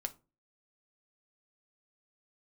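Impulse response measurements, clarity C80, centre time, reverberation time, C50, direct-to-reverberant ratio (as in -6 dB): 26.0 dB, 4 ms, 0.30 s, 18.5 dB, 6.5 dB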